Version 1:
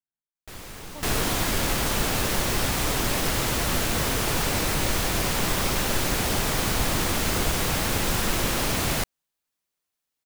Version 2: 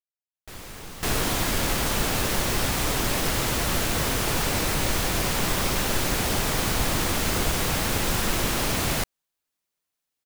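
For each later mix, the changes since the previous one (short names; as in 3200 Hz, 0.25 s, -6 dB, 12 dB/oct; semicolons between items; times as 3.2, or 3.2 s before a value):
speech: muted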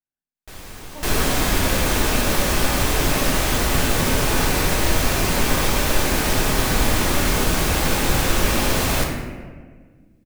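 speech: unmuted; reverb: on, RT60 1.6 s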